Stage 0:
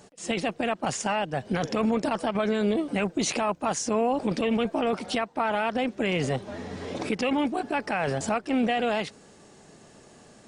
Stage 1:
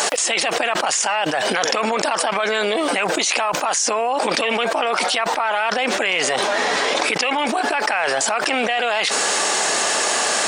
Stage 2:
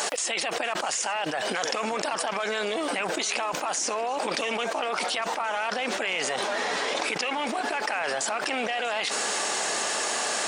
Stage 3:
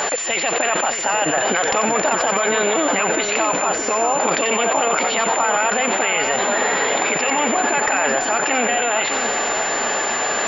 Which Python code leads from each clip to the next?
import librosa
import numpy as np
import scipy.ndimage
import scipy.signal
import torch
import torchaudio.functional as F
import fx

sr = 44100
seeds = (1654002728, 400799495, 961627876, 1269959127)

y1 = scipy.signal.sosfilt(scipy.signal.butter(2, 840.0, 'highpass', fs=sr, output='sos'), x)
y1 = fx.env_flatten(y1, sr, amount_pct=100)
y1 = y1 * 10.0 ** (7.0 / 20.0)
y2 = fx.echo_swing(y1, sr, ms=853, ratio=3, feedback_pct=68, wet_db=-19.0)
y2 = y2 * 10.0 ** (-8.5 / 20.0)
y3 = fx.echo_split(y2, sr, split_hz=2000.0, low_ms=618, high_ms=90, feedback_pct=52, wet_db=-6.5)
y3 = fx.rider(y3, sr, range_db=10, speed_s=0.5)
y3 = fx.pwm(y3, sr, carrier_hz=7200.0)
y3 = y3 * 10.0 ** (8.5 / 20.0)